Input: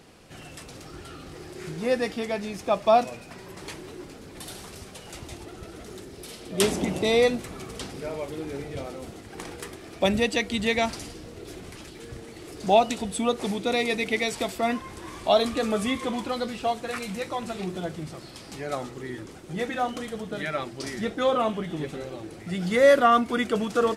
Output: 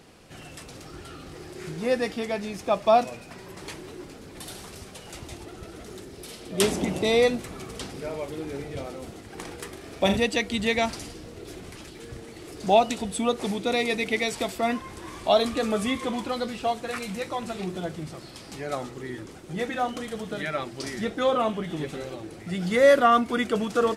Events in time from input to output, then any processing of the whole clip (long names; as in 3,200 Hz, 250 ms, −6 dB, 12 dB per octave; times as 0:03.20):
0:09.69–0:10.17: flutter between parallel walls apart 7 metres, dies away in 0.39 s
0:20.11–0:22.15: one half of a high-frequency compander encoder only